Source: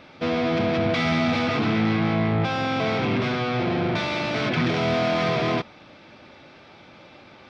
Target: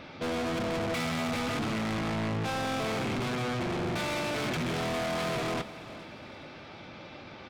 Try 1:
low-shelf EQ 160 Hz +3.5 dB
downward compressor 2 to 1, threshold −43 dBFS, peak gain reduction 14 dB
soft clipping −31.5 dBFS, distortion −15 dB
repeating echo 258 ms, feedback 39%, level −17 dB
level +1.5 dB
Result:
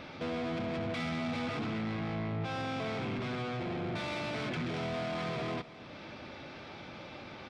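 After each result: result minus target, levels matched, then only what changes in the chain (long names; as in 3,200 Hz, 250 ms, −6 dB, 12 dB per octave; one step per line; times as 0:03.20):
downward compressor: peak gain reduction +14 dB; echo 162 ms early
remove: downward compressor 2 to 1, threshold −43 dBFS, peak gain reduction 14 dB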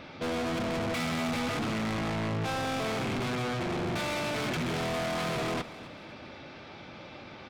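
echo 162 ms early
change: repeating echo 420 ms, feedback 39%, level −17 dB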